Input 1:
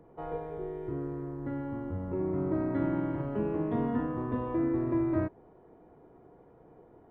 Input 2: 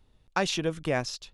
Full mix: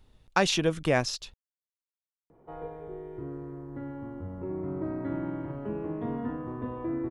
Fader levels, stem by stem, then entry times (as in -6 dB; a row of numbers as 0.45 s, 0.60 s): -3.0 dB, +3.0 dB; 2.30 s, 0.00 s